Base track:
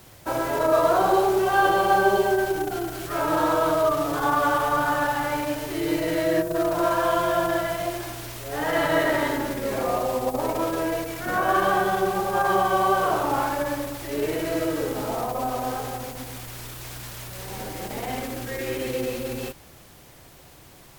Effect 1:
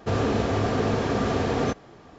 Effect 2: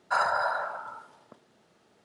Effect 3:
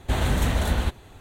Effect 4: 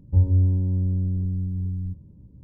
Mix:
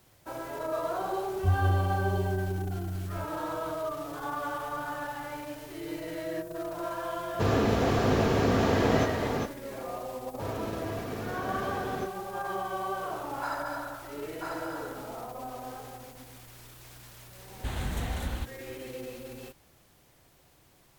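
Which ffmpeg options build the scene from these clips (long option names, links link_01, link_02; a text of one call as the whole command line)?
ffmpeg -i bed.wav -i cue0.wav -i cue1.wav -i cue2.wav -i cue3.wav -filter_complex "[1:a]asplit=2[link_01][link_02];[0:a]volume=-12.5dB[link_03];[link_01]aecho=1:1:400:0.596[link_04];[2:a]aecho=1:1:990:0.668[link_05];[3:a]equalizer=frequency=520:width=1.5:gain=-5[link_06];[4:a]atrim=end=2.43,asetpts=PTS-STARTPTS,volume=-7.5dB,afade=type=in:duration=0.004:curve=hsin,afade=type=out:start_time=2.426:duration=0.004:curve=hsin,adelay=1310[link_07];[link_04]atrim=end=2.18,asetpts=PTS-STARTPTS,volume=-1.5dB,afade=type=in:duration=0.004:curve=hsin,afade=type=out:start_time=2.176:duration=0.004:curve=hsin,adelay=7330[link_08];[link_02]atrim=end=2.18,asetpts=PTS-STARTPTS,volume=-12.5dB,afade=type=in:duration=0.004:curve=hsin,afade=type=out:start_time=2.176:duration=0.004:curve=hsin,adelay=10330[link_09];[link_05]atrim=end=2.04,asetpts=PTS-STARTPTS,volume=-9.5dB,afade=type=in:duration=0.004:curve=hsin,afade=type=out:start_time=2.036:duration=0.004:curve=hsin,adelay=13310[link_10];[link_06]atrim=end=1.2,asetpts=PTS-STARTPTS,volume=-10dB,afade=type=in:duration=0.004:curve=hsin,afade=type=out:start_time=1.196:duration=0.004:curve=hsin,adelay=17550[link_11];[link_03][link_07][link_08][link_09][link_10][link_11]amix=inputs=6:normalize=0" out.wav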